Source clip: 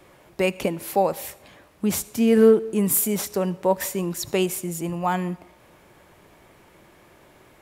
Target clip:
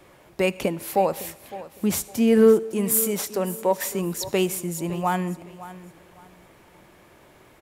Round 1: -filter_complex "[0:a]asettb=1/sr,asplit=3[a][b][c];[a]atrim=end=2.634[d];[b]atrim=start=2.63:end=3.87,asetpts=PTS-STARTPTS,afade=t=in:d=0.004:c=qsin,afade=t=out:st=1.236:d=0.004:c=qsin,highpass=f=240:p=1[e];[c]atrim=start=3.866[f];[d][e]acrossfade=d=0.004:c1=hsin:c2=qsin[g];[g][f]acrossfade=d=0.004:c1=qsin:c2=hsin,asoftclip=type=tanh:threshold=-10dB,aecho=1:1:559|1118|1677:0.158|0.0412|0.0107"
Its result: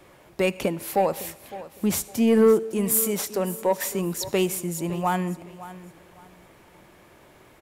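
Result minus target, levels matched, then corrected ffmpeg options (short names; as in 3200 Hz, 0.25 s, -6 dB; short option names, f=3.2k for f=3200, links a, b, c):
soft clip: distortion +14 dB
-filter_complex "[0:a]asettb=1/sr,asplit=3[a][b][c];[a]atrim=end=2.634[d];[b]atrim=start=2.63:end=3.87,asetpts=PTS-STARTPTS,afade=t=in:d=0.004:c=qsin,afade=t=out:st=1.236:d=0.004:c=qsin,highpass=f=240:p=1[e];[c]atrim=start=3.866[f];[d][e]acrossfade=d=0.004:c1=hsin:c2=qsin[g];[g][f]acrossfade=d=0.004:c1=qsin:c2=hsin,asoftclip=type=tanh:threshold=-1.5dB,aecho=1:1:559|1118|1677:0.158|0.0412|0.0107"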